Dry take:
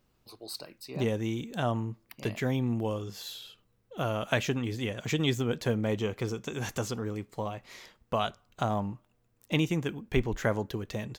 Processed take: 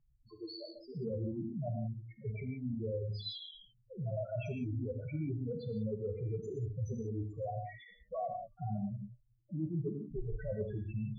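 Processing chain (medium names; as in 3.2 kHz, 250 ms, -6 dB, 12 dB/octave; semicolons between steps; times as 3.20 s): loudest bins only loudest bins 2; reverse; compression, threshold -42 dBFS, peak gain reduction 14 dB; reverse; level-controlled noise filter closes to 1.9 kHz, open at -43 dBFS; gated-style reverb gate 200 ms flat, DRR 4 dB; trim +6 dB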